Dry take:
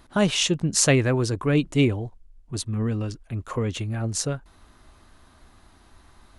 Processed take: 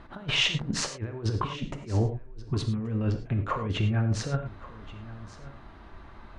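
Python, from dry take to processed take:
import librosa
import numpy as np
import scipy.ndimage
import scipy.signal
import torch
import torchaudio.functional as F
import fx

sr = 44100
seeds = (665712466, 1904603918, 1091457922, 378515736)

y = scipy.signal.sosfilt(scipy.signal.butter(2, 2400.0, 'lowpass', fs=sr, output='sos'), x)
y = fx.over_compress(y, sr, threshold_db=-29.0, ratio=-0.5)
y = y + 10.0 ** (-18.0 / 20.0) * np.pad(y, (int(1129 * sr / 1000.0), 0))[:len(y)]
y = fx.rev_gated(y, sr, seeds[0], gate_ms=130, shape='flat', drr_db=5.5)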